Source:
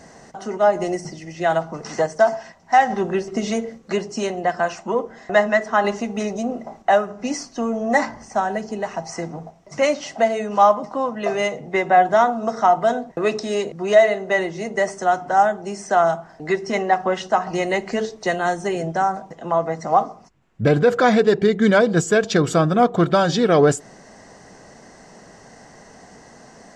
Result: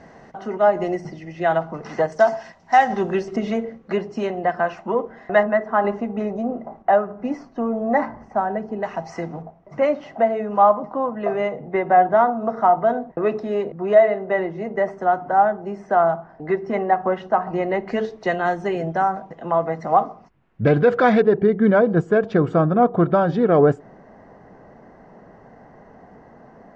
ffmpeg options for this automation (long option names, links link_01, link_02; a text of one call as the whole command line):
ffmpeg -i in.wav -af "asetnsamples=nb_out_samples=441:pad=0,asendcmd='2.12 lowpass f 5300;3.36 lowpass f 2300;5.43 lowpass f 1400;8.83 lowpass f 3100;9.42 lowpass f 1500;17.88 lowpass f 2700;21.22 lowpass f 1300',lowpass=2700" out.wav